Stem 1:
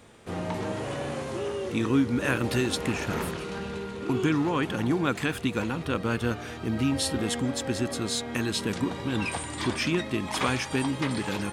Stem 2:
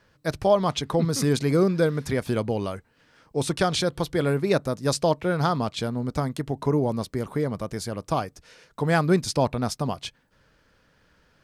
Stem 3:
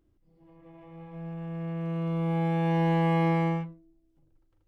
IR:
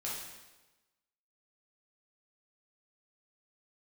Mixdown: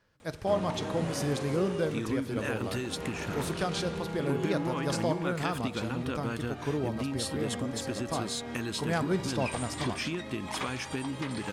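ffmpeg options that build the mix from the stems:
-filter_complex "[0:a]acompressor=threshold=-27dB:ratio=6,adelay=200,volume=-3dB[link_01];[1:a]volume=-10dB,asplit=2[link_02][link_03];[link_03]volume=-13.5dB[link_04];[2:a]adelay=1700,volume=-12.5dB[link_05];[3:a]atrim=start_sample=2205[link_06];[link_04][link_06]afir=irnorm=-1:irlink=0[link_07];[link_01][link_02][link_05][link_07]amix=inputs=4:normalize=0"

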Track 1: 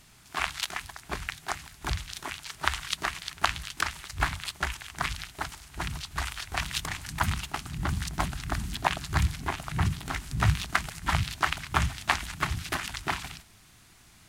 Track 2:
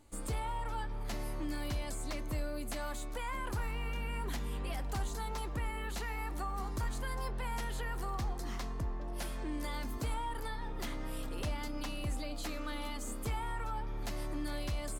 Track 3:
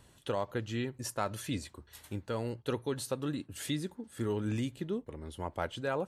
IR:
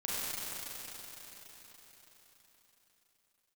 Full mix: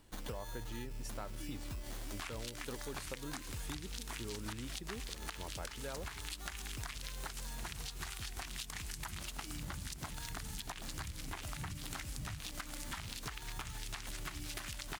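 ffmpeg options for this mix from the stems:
-filter_complex "[0:a]alimiter=limit=-16dB:level=0:latency=1:release=483,adelay=1850,volume=-4dB[link_01];[1:a]equalizer=frequency=1500:width=0.3:gain=-10.5,acrusher=samples=17:mix=1:aa=0.000001,volume=-1.5dB[link_02];[2:a]volume=-6dB[link_03];[link_01][link_02]amix=inputs=2:normalize=0,highshelf=frequency=2800:gain=11,acompressor=threshold=-34dB:ratio=6,volume=0dB[link_04];[link_03][link_04]amix=inputs=2:normalize=0,acompressor=threshold=-40dB:ratio=4"

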